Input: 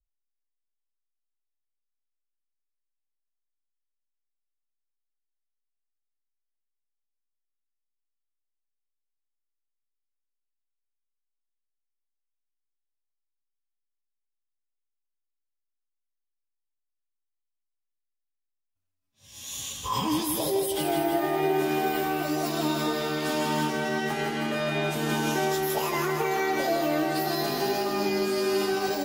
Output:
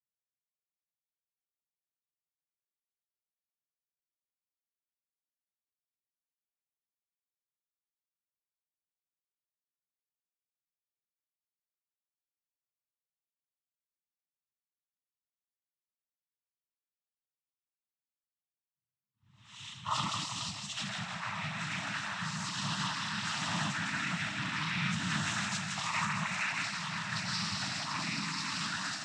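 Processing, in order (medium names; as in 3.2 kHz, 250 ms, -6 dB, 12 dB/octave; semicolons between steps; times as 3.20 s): level-controlled noise filter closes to 750 Hz, open at -24.5 dBFS; inverse Chebyshev band-stop 310–630 Hz, stop band 50 dB; noise-vocoded speech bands 12; trim -1 dB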